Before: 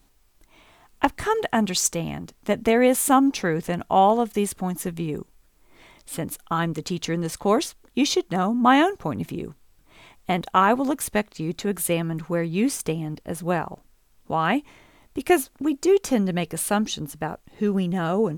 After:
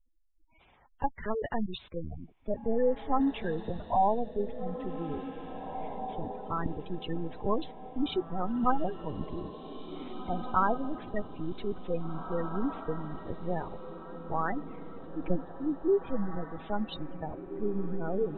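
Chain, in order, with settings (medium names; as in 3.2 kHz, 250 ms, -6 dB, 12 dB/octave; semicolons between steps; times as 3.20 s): LPC vocoder at 8 kHz pitch kept; spectral gate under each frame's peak -15 dB strong; echo that smears into a reverb 1987 ms, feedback 41%, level -9.5 dB; trim -7.5 dB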